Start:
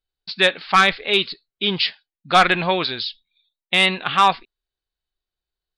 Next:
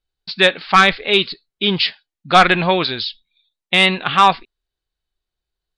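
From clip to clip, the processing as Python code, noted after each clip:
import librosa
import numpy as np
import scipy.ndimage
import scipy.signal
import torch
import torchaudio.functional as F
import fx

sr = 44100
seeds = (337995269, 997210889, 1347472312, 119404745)

y = scipy.signal.sosfilt(scipy.signal.bessel(2, 9500.0, 'lowpass', norm='mag', fs=sr, output='sos'), x)
y = fx.low_shelf(y, sr, hz=330.0, db=3.5)
y = y * librosa.db_to_amplitude(3.0)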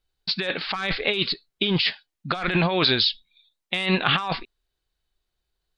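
y = fx.over_compress(x, sr, threshold_db=-21.0, ratio=-1.0)
y = y * librosa.db_to_amplitude(-2.5)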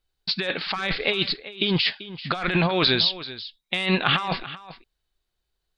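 y = x + 10.0 ** (-15.5 / 20.0) * np.pad(x, (int(388 * sr / 1000.0), 0))[:len(x)]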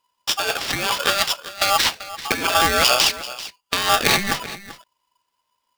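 y = x * np.sign(np.sin(2.0 * np.pi * 990.0 * np.arange(len(x)) / sr))
y = y * librosa.db_to_amplitude(4.0)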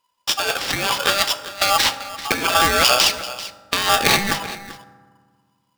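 y = fx.rev_fdn(x, sr, rt60_s=1.6, lf_ratio=1.5, hf_ratio=0.45, size_ms=11.0, drr_db=11.5)
y = y * librosa.db_to_amplitude(1.0)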